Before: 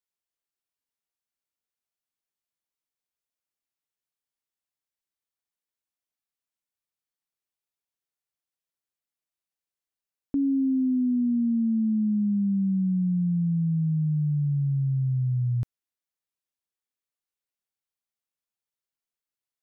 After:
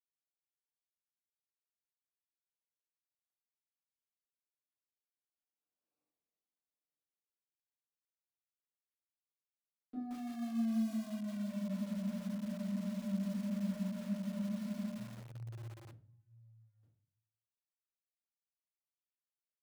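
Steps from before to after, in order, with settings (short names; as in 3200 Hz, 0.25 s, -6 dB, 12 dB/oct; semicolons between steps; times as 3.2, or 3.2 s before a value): Wiener smoothing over 25 samples; Doppler pass-by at 5.96, 43 m/s, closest 4.5 m; HPF 160 Hz 12 dB/oct; low shelf 230 Hz -6.5 dB; sample leveller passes 2; on a send: echo 0.946 s -15.5 dB; on the sum: shoebox room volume 48 m³, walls mixed, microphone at 2.2 m; spectral freeze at 11.52, 3.48 s; lo-fi delay 0.17 s, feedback 55%, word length 9-bit, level -5 dB; gain +5 dB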